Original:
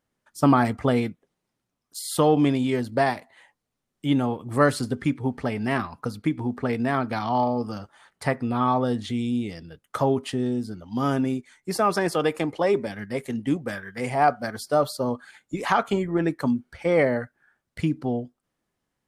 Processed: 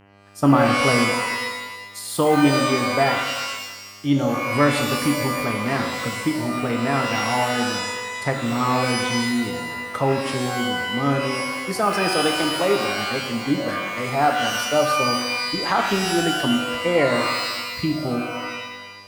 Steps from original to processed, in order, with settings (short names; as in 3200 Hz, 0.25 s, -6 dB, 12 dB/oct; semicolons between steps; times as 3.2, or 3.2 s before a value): buzz 100 Hz, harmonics 31, -53 dBFS -4 dB/oct; shimmer reverb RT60 1.2 s, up +12 st, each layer -2 dB, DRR 3.5 dB